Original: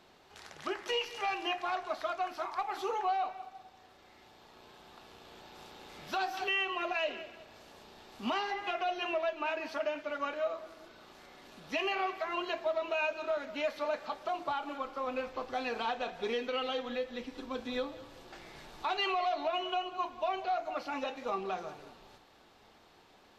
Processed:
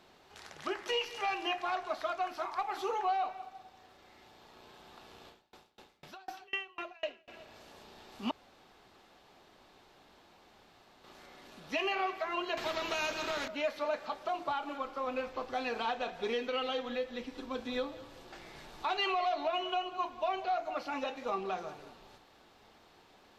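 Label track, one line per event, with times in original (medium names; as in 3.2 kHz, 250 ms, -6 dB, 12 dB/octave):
5.280000	7.280000	sawtooth tremolo in dB decaying 4 Hz, depth 32 dB
8.310000	11.040000	room tone
12.570000	13.480000	spectrum-flattening compressor 2:1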